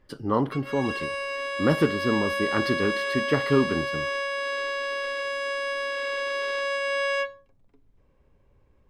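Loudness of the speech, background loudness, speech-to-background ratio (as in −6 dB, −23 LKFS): −26.5 LKFS, −28.5 LKFS, 2.0 dB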